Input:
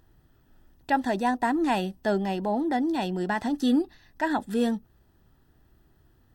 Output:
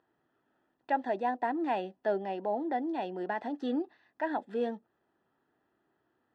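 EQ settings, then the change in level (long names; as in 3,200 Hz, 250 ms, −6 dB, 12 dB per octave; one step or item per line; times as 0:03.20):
dynamic equaliser 580 Hz, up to +4 dB, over −38 dBFS, Q 1.1
band-pass filter 350–2,300 Hz
dynamic equaliser 1,200 Hz, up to −6 dB, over −41 dBFS, Q 1.8
−5.0 dB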